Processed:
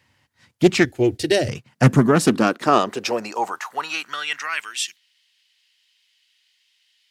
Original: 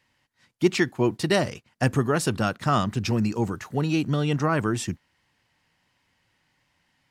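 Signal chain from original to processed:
high-pass filter sweep 78 Hz → 3,300 Hz, 0:01.18–0:04.91
0:00.85–0:01.49: phaser with its sweep stopped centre 430 Hz, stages 4
highs frequency-modulated by the lows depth 0.35 ms
level +5.5 dB

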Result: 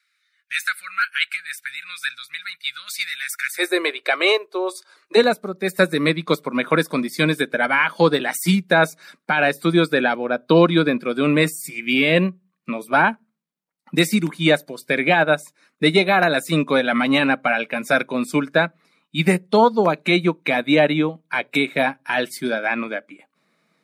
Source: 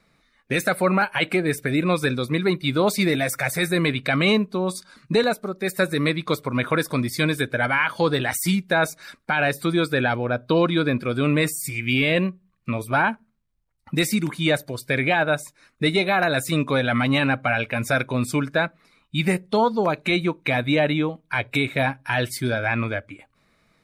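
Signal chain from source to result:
elliptic high-pass filter 1,400 Hz, stop band 40 dB, from 0:03.58 350 Hz, from 0:05.16 160 Hz
expander for the loud parts 1.5 to 1, over −32 dBFS
level +6.5 dB

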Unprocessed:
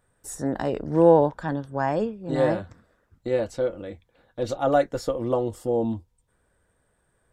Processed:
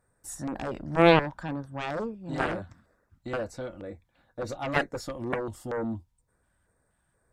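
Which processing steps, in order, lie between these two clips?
auto-filter notch square 2.1 Hz 450–3,100 Hz
harmonic generator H 7 −11 dB, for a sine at −4.5 dBFS
level −2.5 dB

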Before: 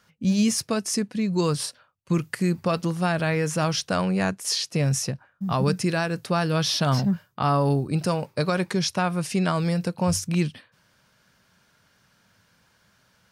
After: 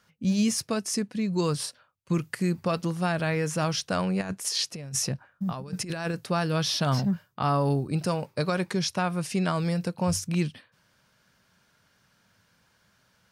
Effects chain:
0:04.21–0:06.14: compressor whose output falls as the input rises −27 dBFS, ratio −0.5
level −3 dB

